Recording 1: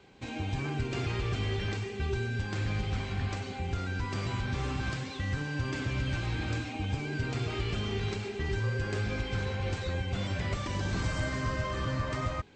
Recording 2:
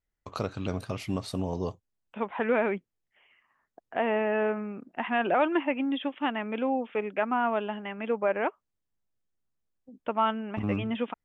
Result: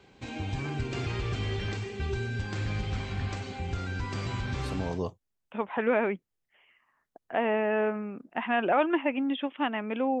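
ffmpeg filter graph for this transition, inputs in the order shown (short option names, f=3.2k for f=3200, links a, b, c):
-filter_complex "[0:a]apad=whole_dur=10.2,atrim=end=10.2,atrim=end=5.03,asetpts=PTS-STARTPTS[a];[1:a]atrim=start=1.15:end=6.82,asetpts=PTS-STARTPTS[b];[a][b]acrossfade=d=0.5:c1=qsin:c2=qsin"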